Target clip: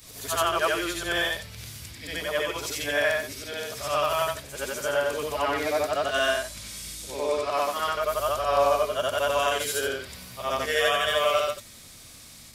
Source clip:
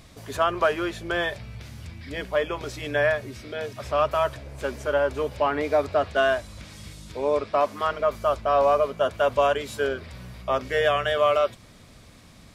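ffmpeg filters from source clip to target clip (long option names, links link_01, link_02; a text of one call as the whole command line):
ffmpeg -i in.wav -af "afftfilt=real='re':imag='-im':win_size=8192:overlap=0.75,crystalizer=i=6:c=0" out.wav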